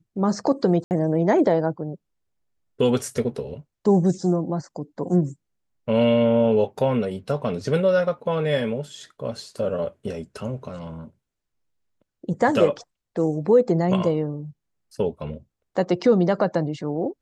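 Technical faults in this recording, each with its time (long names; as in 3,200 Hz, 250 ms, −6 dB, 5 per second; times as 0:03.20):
0:00.84–0:00.91: drop-out 69 ms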